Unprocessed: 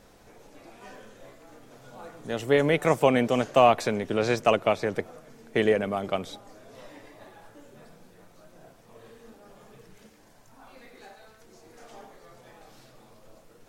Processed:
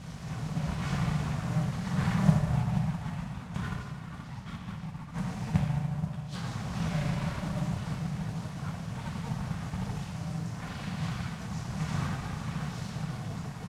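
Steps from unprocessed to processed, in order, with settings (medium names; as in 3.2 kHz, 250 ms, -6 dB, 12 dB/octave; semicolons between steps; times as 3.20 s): comb 2.7 ms, depth 74%; inverted gate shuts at -24 dBFS, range -33 dB; echo whose repeats swap between lows and highs 480 ms, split 1.2 kHz, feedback 70%, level -10 dB; FDN reverb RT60 1.5 s, low-frequency decay 1.1×, high-frequency decay 0.8×, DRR -3.5 dB; full-wave rectifier; high-pass 62 Hz; modulation noise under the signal 14 dB; low-pass 8.1 kHz 12 dB/octave; resonant low shelf 240 Hz +12 dB, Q 3; trim +5.5 dB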